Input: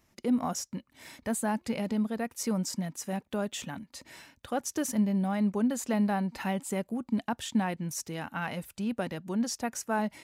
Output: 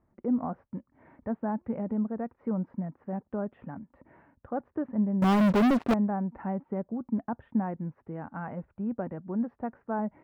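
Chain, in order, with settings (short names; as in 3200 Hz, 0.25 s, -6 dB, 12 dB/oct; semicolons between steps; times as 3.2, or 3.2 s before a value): Bessel low-pass 980 Hz, order 6; 5.22–5.94 sample leveller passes 5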